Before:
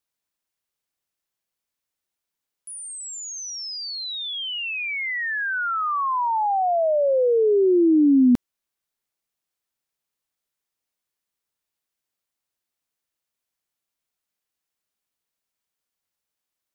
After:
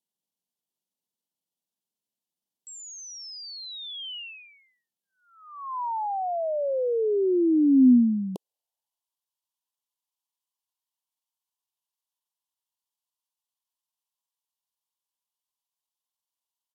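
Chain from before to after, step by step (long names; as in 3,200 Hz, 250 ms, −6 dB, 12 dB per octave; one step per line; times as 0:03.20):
high-pass filter sweep 240 Hz → 1,400 Hz, 0:07.67–0:09.08
pitch shifter −4.5 semitones
Chebyshev band-stop filter 1,000–2,900 Hz, order 3
level −5.5 dB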